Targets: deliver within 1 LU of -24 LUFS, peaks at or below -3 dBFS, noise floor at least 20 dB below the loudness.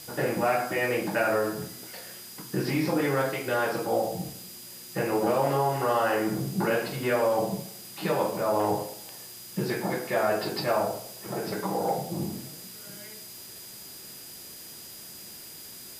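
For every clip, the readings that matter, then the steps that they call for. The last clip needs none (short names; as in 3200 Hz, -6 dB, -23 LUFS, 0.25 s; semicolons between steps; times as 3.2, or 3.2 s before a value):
steady tone 4900 Hz; tone level -49 dBFS; noise floor -44 dBFS; noise floor target -48 dBFS; loudness -28.0 LUFS; peak -12.0 dBFS; loudness target -24.0 LUFS
-> notch 4900 Hz, Q 30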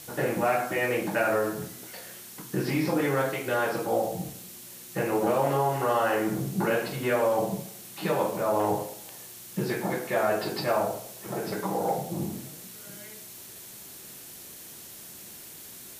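steady tone none; noise floor -45 dBFS; noise floor target -48 dBFS
-> noise print and reduce 6 dB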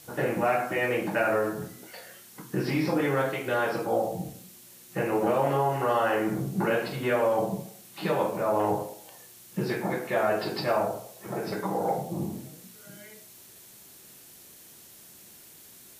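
noise floor -51 dBFS; loudness -28.0 LUFS; peak -12.0 dBFS; loudness target -24.0 LUFS
-> gain +4 dB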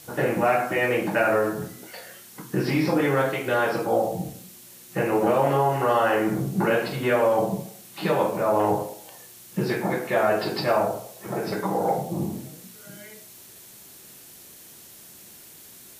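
loudness -24.0 LUFS; peak -8.0 dBFS; noise floor -47 dBFS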